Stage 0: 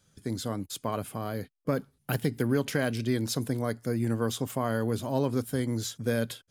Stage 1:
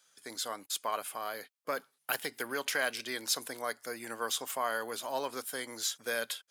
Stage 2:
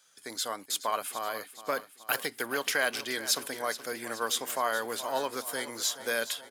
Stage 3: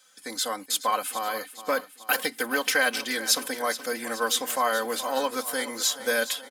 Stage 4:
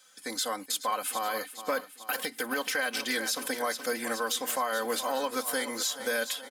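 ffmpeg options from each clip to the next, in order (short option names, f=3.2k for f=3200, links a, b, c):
-af "highpass=870,volume=3dB"
-af "aecho=1:1:424|848|1272|1696|2120|2544:0.2|0.114|0.0648|0.037|0.0211|0.012,volume=3.5dB"
-af "aecho=1:1:3.9:0.78,volume=3dB"
-af "alimiter=limit=-19.5dB:level=0:latency=1:release=134"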